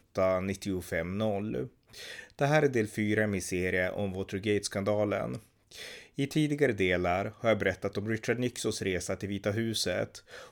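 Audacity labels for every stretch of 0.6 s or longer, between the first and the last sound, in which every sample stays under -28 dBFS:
1.630000	2.410000	silence
5.350000	6.190000	silence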